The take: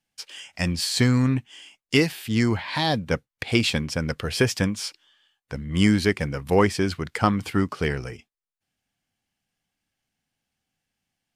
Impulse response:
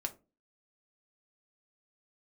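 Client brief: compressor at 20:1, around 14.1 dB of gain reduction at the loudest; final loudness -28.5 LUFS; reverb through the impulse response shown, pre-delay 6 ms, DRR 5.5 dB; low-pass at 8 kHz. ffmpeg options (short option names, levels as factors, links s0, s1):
-filter_complex "[0:a]lowpass=8000,acompressor=threshold=0.0398:ratio=20,asplit=2[s0][s1];[1:a]atrim=start_sample=2205,adelay=6[s2];[s1][s2]afir=irnorm=-1:irlink=0,volume=0.501[s3];[s0][s3]amix=inputs=2:normalize=0,volume=1.68"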